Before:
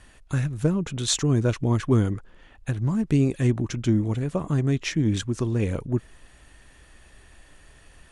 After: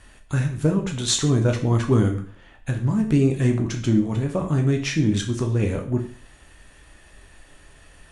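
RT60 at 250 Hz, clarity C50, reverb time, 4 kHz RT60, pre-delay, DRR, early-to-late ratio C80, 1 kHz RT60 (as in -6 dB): 0.45 s, 9.5 dB, 0.45 s, 0.45 s, 5 ms, 2.5 dB, 13.5 dB, 0.50 s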